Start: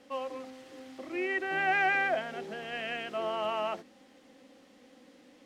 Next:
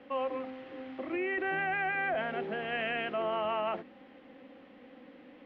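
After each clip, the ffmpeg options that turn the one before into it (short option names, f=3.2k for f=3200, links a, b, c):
-filter_complex "[0:a]lowpass=f=2.9k:w=0.5412,lowpass=f=2.9k:w=1.3066,acrossover=split=170[a][b];[b]alimiter=level_in=6dB:limit=-24dB:level=0:latency=1:release=10,volume=-6dB[c];[a][c]amix=inputs=2:normalize=0,volume=4.5dB"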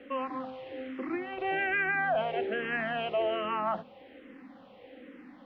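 -filter_complex "[0:a]asplit=2[a][b];[b]afreqshift=-1.2[c];[a][c]amix=inputs=2:normalize=1,volume=5.5dB"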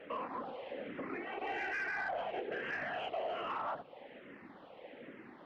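-filter_complex "[0:a]afftfilt=real='hypot(re,im)*cos(2*PI*random(0))':imag='hypot(re,im)*sin(2*PI*random(1))':win_size=512:overlap=0.75,asplit=2[a][b];[b]highpass=f=720:p=1,volume=13dB,asoftclip=type=tanh:threshold=-22dB[c];[a][c]amix=inputs=2:normalize=0,lowpass=f=2.2k:p=1,volume=-6dB,acompressor=threshold=-42dB:ratio=2,volume=1dB"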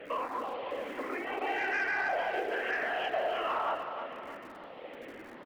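-filter_complex "[0:a]acrossover=split=250[a][b];[a]aeval=exprs='(mod(944*val(0)+1,2)-1)/944':c=same[c];[b]aecho=1:1:313|626|939|1252|1565|1878:0.398|0.191|0.0917|0.044|0.0211|0.0101[d];[c][d]amix=inputs=2:normalize=0,volume=6dB"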